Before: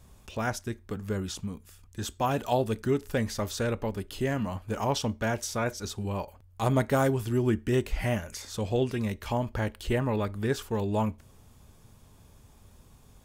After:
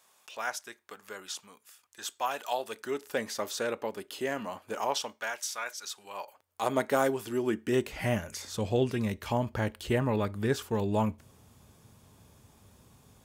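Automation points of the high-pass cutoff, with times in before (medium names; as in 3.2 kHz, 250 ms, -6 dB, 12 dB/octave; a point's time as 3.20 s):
2.58 s 810 Hz
3.19 s 370 Hz
4.70 s 370 Hz
5.41 s 1.2 kHz
5.94 s 1.2 kHz
6.79 s 310 Hz
7.49 s 310 Hz
8.18 s 88 Hz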